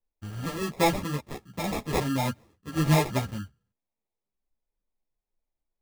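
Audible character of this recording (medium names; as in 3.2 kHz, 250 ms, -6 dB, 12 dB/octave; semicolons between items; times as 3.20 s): phasing stages 2, 1.4 Hz, lowest notch 780–2800 Hz; aliases and images of a low sample rate 1.5 kHz, jitter 0%; a shimmering, thickened sound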